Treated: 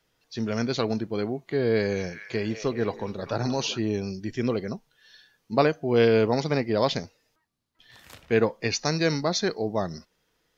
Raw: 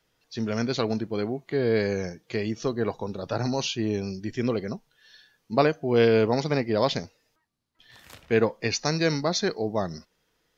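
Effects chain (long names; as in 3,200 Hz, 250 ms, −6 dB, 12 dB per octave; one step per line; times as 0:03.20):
0:01.68–0:03.79: echo through a band-pass that steps 207 ms, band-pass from 2,900 Hz, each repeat −0.7 octaves, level −5 dB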